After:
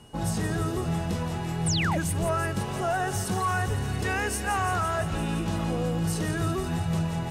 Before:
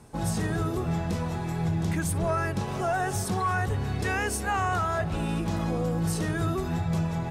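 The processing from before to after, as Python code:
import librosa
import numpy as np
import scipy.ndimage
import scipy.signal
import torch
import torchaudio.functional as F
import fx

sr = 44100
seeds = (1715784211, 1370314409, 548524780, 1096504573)

y = x + 10.0 ** (-57.0 / 20.0) * np.sin(2.0 * np.pi * 2900.0 * np.arange(len(x)) / sr)
y = fx.echo_wet_highpass(y, sr, ms=170, feedback_pct=79, hz=2200.0, wet_db=-8.5)
y = fx.spec_paint(y, sr, seeds[0], shape='fall', start_s=1.66, length_s=0.32, low_hz=510.0, high_hz=10000.0, level_db=-29.0)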